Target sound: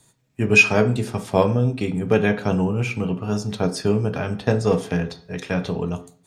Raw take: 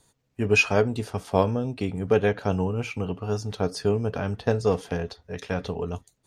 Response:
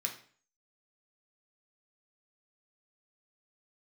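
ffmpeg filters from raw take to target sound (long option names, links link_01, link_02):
-filter_complex "[0:a]asplit=2[link_01][link_02];[1:a]atrim=start_sample=2205,lowshelf=frequency=270:gain=10[link_03];[link_02][link_03]afir=irnorm=-1:irlink=0,volume=-4dB[link_04];[link_01][link_04]amix=inputs=2:normalize=0,volume=1.5dB"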